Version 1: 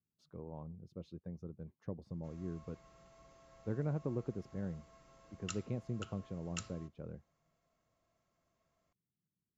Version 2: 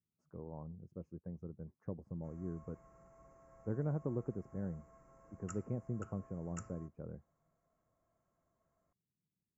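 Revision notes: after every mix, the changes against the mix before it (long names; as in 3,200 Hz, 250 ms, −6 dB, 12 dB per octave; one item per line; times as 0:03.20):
speech: add high-frequency loss of the air 68 metres
master: add Butterworth band-reject 3,700 Hz, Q 0.58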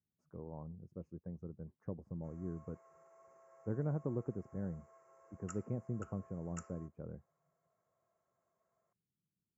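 background: add linear-phase brick-wall high-pass 330 Hz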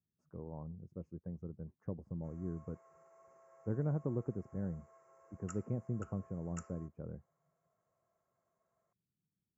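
speech: add low-shelf EQ 210 Hz +3 dB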